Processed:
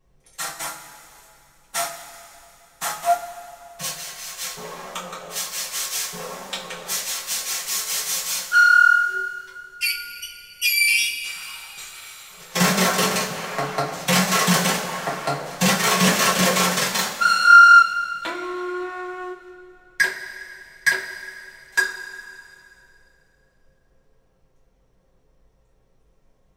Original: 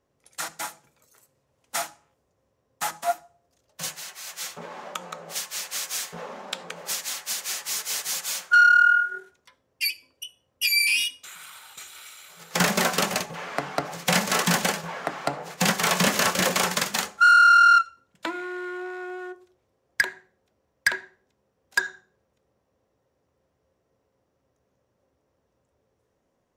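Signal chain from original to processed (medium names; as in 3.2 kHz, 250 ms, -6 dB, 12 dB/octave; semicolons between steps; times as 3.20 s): added noise brown -65 dBFS; two-slope reverb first 0.26 s, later 2.7 s, from -18 dB, DRR -7 dB; trim -4 dB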